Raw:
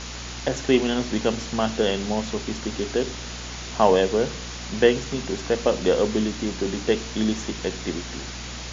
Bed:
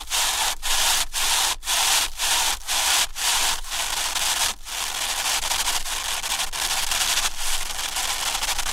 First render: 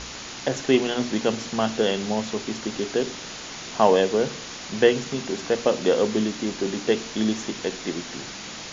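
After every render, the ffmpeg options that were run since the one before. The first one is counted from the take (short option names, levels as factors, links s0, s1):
-af "bandreject=f=60:t=h:w=4,bandreject=f=120:t=h:w=4,bandreject=f=180:t=h:w=4,bandreject=f=240:t=h:w=4"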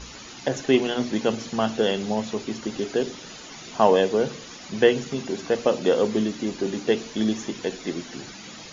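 -af "afftdn=nr=10:nf=-37"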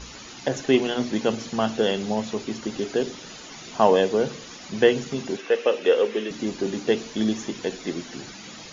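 -filter_complex "[0:a]asettb=1/sr,asplit=3[s0][s1][s2];[s0]atrim=end=5.374[s3];[s1]atrim=start=5.37:end=6.31,asetpts=PTS-STARTPTS,afade=t=in:d=0.004:c=qsin,afade=t=out:st=0.936:d=0.004:c=qsin,highpass=420,equalizer=f=450:t=q:w=4:g=6,equalizer=f=680:t=q:w=4:g=-5,equalizer=f=970:t=q:w=4:g=-4,equalizer=f=1800:t=q:w=4:g=4,equalizer=f=2700:t=q:w=4:g=7,equalizer=f=4500:t=q:w=4:g=-8,lowpass=f=5700:w=0.5412,lowpass=f=5700:w=1.3066[s4];[s2]atrim=start=6.306[s5];[s3][s4]acrossfade=d=0.004:c1=hsin:c2=qsin[s6];[s6][s5]acrossfade=d=0.004:c1=qsin:c2=hsin"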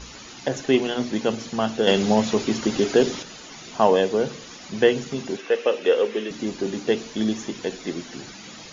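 -filter_complex "[0:a]asettb=1/sr,asplit=3[s0][s1][s2];[s0]atrim=end=1.874[s3];[s1]atrim=start=1.87:end=3.23,asetpts=PTS-STARTPTS,afade=t=in:d=0.004:c=qsin,afade=t=out:st=1.356:d=0.004:c=qsin,acontrast=85[s4];[s2]atrim=start=3.226[s5];[s3][s4]acrossfade=d=0.004:c1=hsin:c2=qsin[s6];[s6][s5]acrossfade=d=0.004:c1=qsin:c2=hsin"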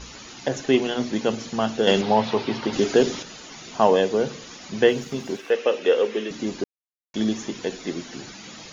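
-filter_complex "[0:a]asettb=1/sr,asplit=3[s0][s1][s2];[s0]atrim=end=2.014[s3];[s1]atrim=start=2.01:end=2.73,asetpts=PTS-STARTPTS,afade=t=in:d=0.004:c=qsin,afade=t=out:st=0.716:d=0.004:c=qsin,highpass=110,equalizer=f=120:t=q:w=4:g=4,equalizer=f=200:t=q:w=4:g=-6,equalizer=f=310:t=q:w=4:g=-4,equalizer=f=890:t=q:w=4:g=7,lowpass=f=4600:w=0.5412,lowpass=f=4600:w=1.3066[s4];[s2]atrim=start=2.726[s5];[s3][s4]acrossfade=d=0.004:c1=hsin:c2=qsin[s6];[s6][s5]acrossfade=d=0.004:c1=qsin:c2=hsin,asettb=1/sr,asplit=3[s7][s8][s9];[s7]atrim=end=4.884[s10];[s8]atrim=start=4.88:end=5.51,asetpts=PTS-STARTPTS,afade=t=in:d=0.004:c=qsin,afade=t=out:st=0.626:d=0.004:c=qsin,aeval=exprs='sgn(val(0))*max(abs(val(0))-0.00299,0)':c=same[s11];[s9]atrim=start=5.506[s12];[s10][s11]acrossfade=d=0.004:c1=hsin:c2=qsin[s13];[s13][s12]acrossfade=d=0.004:c1=qsin:c2=hsin,asplit=3[s14][s15][s16];[s14]atrim=end=6.64,asetpts=PTS-STARTPTS,afade=t=out:st=6.636:d=0.004:c=hsin[s17];[s15]atrim=start=6.64:end=7.14,asetpts=PTS-STARTPTS,volume=0[s18];[s16]atrim=start=7.14,asetpts=PTS-STARTPTS,afade=t=in:d=0.004:c=hsin[s19];[s17][s18][s19]concat=n=3:v=0:a=1"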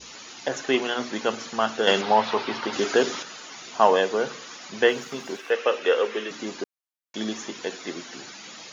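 -af "adynamicequalizer=threshold=0.0126:dfrequency=1300:dqfactor=1.3:tfrequency=1300:tqfactor=1.3:attack=5:release=100:ratio=0.375:range=3.5:mode=boostabove:tftype=bell,highpass=f=500:p=1"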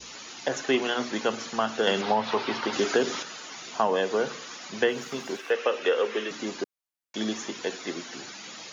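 -filter_complex "[0:a]acrossover=split=290[s0][s1];[s1]acompressor=threshold=0.0891:ratio=6[s2];[s0][s2]amix=inputs=2:normalize=0"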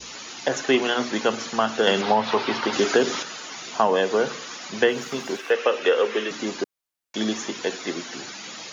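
-af "volume=1.68"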